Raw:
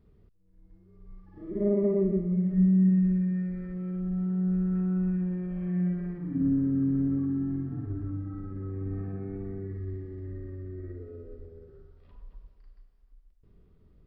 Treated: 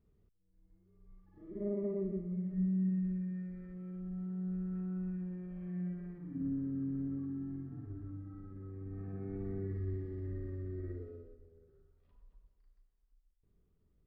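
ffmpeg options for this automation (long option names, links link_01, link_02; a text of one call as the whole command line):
ffmpeg -i in.wav -af "volume=-2dB,afade=type=in:start_time=8.91:duration=0.69:silence=0.354813,afade=type=out:start_time=10.94:duration=0.42:silence=0.251189" out.wav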